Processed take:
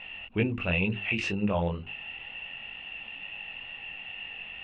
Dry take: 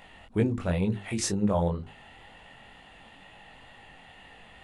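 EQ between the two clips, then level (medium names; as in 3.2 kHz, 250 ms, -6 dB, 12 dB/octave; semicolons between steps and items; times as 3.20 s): resonant low-pass 2.7 kHz, resonance Q 15; -2.5 dB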